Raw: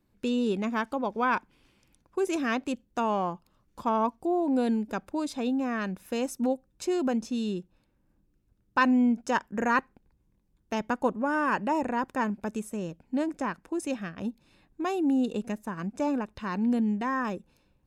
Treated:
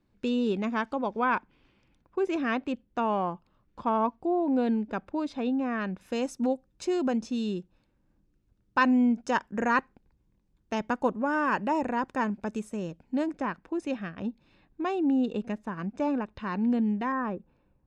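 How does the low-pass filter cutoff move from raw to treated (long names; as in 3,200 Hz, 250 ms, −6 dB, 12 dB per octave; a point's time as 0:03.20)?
5,400 Hz
from 0:01.19 3,300 Hz
from 0:06.01 6,800 Hz
from 0:13.32 3,900 Hz
from 0:17.12 1,600 Hz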